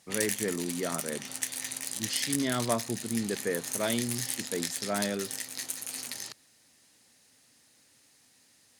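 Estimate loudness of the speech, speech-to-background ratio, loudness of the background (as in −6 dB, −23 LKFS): −33.5 LKFS, 0.5 dB, −34.0 LKFS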